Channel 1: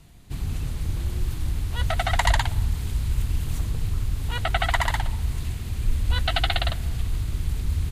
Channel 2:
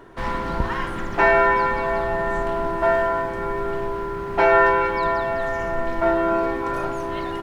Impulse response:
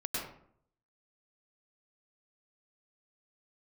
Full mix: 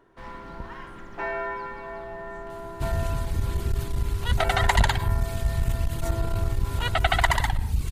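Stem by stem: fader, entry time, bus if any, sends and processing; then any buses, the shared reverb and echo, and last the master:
+2.5 dB, 2.50 s, send -16 dB, reverb removal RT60 0.9 s
-15.0 dB, 0.00 s, send -17 dB, dry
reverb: on, RT60 0.60 s, pre-delay 94 ms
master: core saturation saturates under 150 Hz

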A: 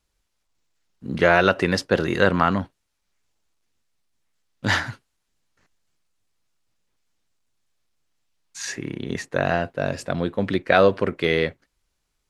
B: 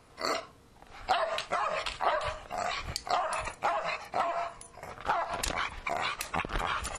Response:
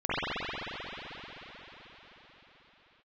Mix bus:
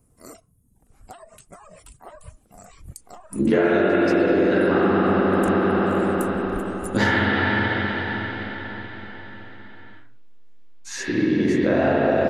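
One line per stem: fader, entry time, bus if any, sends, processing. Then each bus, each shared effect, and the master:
+1.5 dB, 2.30 s, send -3.5 dB, flange 0.6 Hz, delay 5.9 ms, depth 5.3 ms, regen -63%; bell 320 Hz +11.5 dB 1.4 oct; ensemble effect
+1.0 dB, 0.00 s, no send, reverb removal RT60 0.7 s; EQ curve 210 Hz 0 dB, 830 Hz -17 dB, 4200 Hz -23 dB, 8900 Hz +3 dB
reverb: on, RT60 5.1 s, pre-delay 44 ms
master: compressor 10:1, threshold -15 dBFS, peak gain reduction 14 dB

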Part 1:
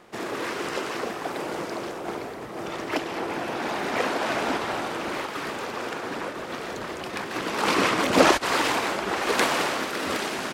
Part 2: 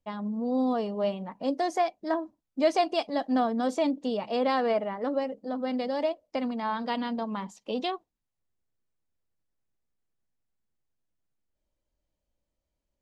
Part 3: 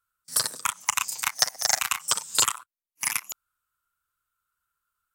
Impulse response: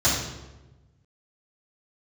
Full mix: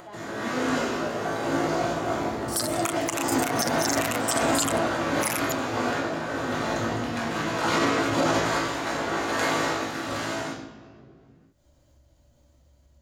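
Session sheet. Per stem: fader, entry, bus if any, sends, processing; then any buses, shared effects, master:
-5.0 dB, 0.00 s, send -10 dB, AGC gain up to 8 dB; random-step tremolo 3.5 Hz; resonator 55 Hz, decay 0.27 s, harmonics all, mix 90%
-19.0 dB, 0.00 s, send -6 dB, dry
+2.0 dB, 2.20 s, no send, spectral gate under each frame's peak -30 dB strong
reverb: on, RT60 1.1 s, pre-delay 3 ms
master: upward compressor, threshold -37 dBFS; limiter -13 dBFS, peak gain reduction 11.5 dB

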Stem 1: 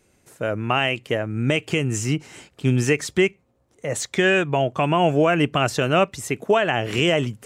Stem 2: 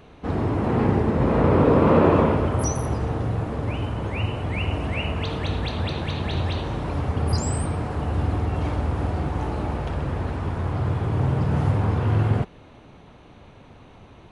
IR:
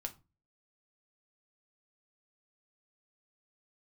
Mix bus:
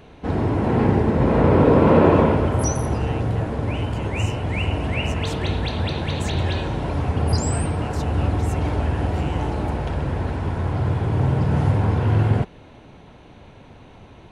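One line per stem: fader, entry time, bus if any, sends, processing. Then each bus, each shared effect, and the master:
-10.0 dB, 2.25 s, no send, limiter -18 dBFS, peak gain reduction 10.5 dB
+2.5 dB, 0.00 s, no send, notch 1200 Hz, Q 10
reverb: off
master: dry

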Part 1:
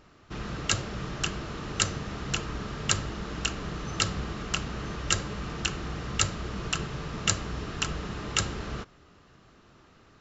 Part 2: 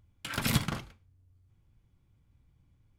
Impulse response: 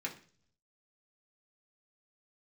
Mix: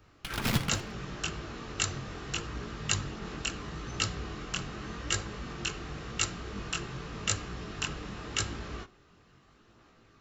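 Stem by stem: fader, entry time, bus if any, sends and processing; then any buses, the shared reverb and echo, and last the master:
-2.0 dB, 0.00 s, send -12.5 dB, chorus voices 2, 0.76 Hz, delay 20 ms, depth 3 ms
-1.5 dB, 0.00 s, no send, high shelf 5700 Hz +8.5 dB; running maximum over 5 samples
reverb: on, RT60 0.45 s, pre-delay 3 ms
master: dry

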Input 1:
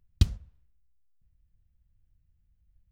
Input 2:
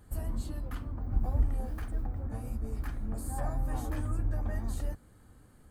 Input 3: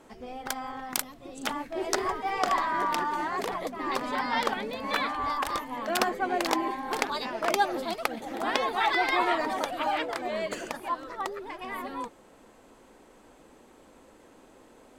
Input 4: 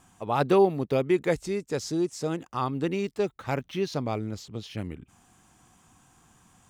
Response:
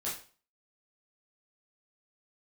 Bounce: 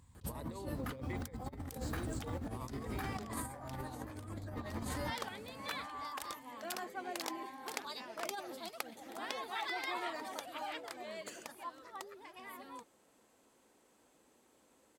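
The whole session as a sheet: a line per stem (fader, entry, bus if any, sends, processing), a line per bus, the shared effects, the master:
-13.0 dB, 0.00 s, no send, per-bin compression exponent 0.6; AGC gain up to 16.5 dB
+2.0 dB, 0.15 s, no send, HPF 100 Hz 12 dB/oct
-17.5 dB, 0.75 s, no send, high shelf 4000 Hz +11 dB
-18.0 dB, 0.00 s, no send, ripple EQ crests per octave 1, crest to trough 15 dB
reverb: off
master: HPF 66 Hz 12 dB/oct; negative-ratio compressor -40 dBFS, ratio -0.5

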